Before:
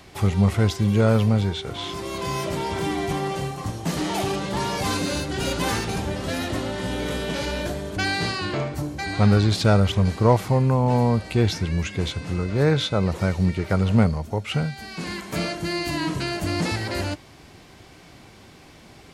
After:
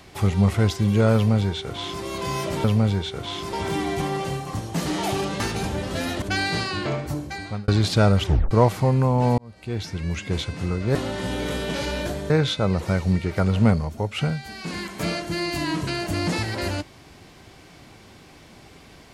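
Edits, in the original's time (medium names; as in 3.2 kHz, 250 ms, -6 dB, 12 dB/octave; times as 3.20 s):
1.15–2.04 s: copy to 2.64 s
4.51–5.73 s: delete
6.55–7.90 s: move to 12.63 s
8.86–9.36 s: fade out
9.94 s: tape stop 0.25 s
11.06–12.04 s: fade in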